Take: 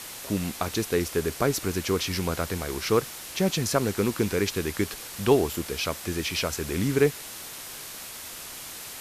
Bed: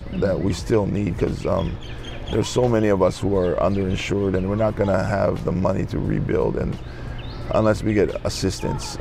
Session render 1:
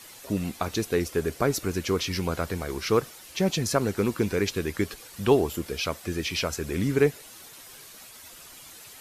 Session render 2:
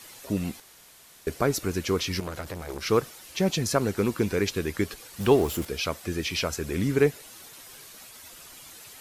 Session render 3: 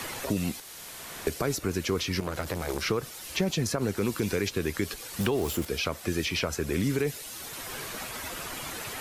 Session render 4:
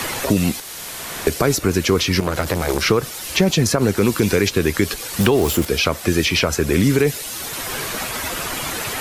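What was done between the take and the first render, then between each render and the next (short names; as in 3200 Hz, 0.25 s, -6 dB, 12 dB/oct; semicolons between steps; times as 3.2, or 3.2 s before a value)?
denoiser 10 dB, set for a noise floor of -40 dBFS
0.6–1.27 room tone; 2.2–2.86 core saturation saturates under 1400 Hz; 5.2–5.65 zero-crossing step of -35 dBFS
limiter -18 dBFS, peak gain reduction 10.5 dB; three-band squash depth 70%
gain +11.5 dB; limiter -3 dBFS, peak gain reduction 1 dB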